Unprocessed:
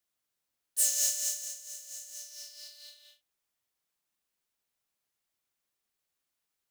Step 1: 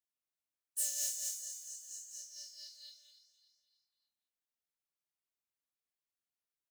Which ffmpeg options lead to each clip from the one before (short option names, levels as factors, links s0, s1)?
-af "afftdn=nr=13:nf=-47,acompressor=threshold=0.00447:ratio=1.5,aecho=1:1:292|584|876|1168:0.237|0.107|0.048|0.0216"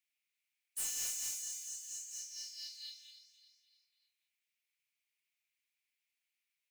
-af "highpass=f=2300:t=q:w=4.9,aeval=exprs='(tanh(70.8*val(0)+0.05)-tanh(0.05))/70.8':c=same,volume=1.41"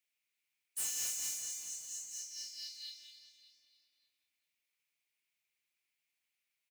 -filter_complex "[0:a]highpass=57,asplit=2[s0][s1];[s1]adelay=394,lowpass=f=1600:p=1,volume=0.422,asplit=2[s2][s3];[s3]adelay=394,lowpass=f=1600:p=1,volume=0.49,asplit=2[s4][s5];[s5]adelay=394,lowpass=f=1600:p=1,volume=0.49,asplit=2[s6][s7];[s7]adelay=394,lowpass=f=1600:p=1,volume=0.49,asplit=2[s8][s9];[s9]adelay=394,lowpass=f=1600:p=1,volume=0.49,asplit=2[s10][s11];[s11]adelay=394,lowpass=f=1600:p=1,volume=0.49[s12];[s0][s2][s4][s6][s8][s10][s12]amix=inputs=7:normalize=0,volume=1.12"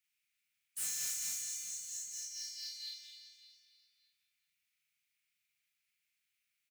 -filter_complex "[0:a]afftfilt=real='re*(1-between(b*sr/4096,220,1200))':imag='im*(1-between(b*sr/4096,220,1200))':win_size=4096:overlap=0.75,asoftclip=type=tanh:threshold=0.0168,asplit=2[s0][s1];[s1]adelay=38,volume=0.794[s2];[s0][s2]amix=inputs=2:normalize=0"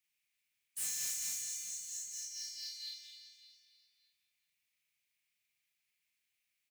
-af "bandreject=f=1400:w=7.5"